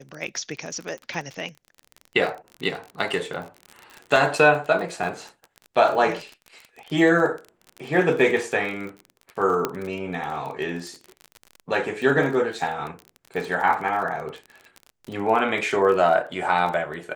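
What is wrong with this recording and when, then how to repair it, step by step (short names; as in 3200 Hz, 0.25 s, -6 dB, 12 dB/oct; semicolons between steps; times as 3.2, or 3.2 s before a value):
crackle 32/s -30 dBFS
4.16 gap 2.4 ms
9.65 pop -9 dBFS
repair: de-click; interpolate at 4.16, 2.4 ms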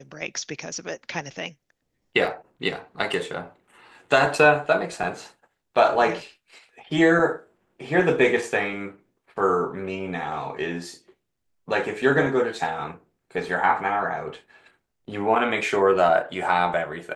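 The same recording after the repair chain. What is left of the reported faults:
none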